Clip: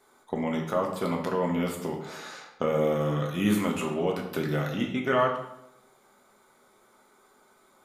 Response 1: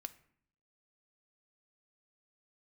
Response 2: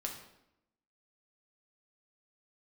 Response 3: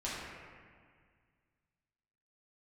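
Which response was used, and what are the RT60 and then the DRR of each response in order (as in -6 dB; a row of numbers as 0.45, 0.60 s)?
2; 0.60, 0.85, 1.9 s; 9.0, 0.5, -9.0 dB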